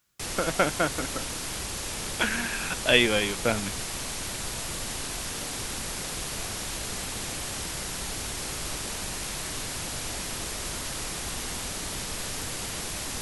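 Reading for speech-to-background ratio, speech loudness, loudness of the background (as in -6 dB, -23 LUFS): 6.0 dB, -26.0 LUFS, -32.0 LUFS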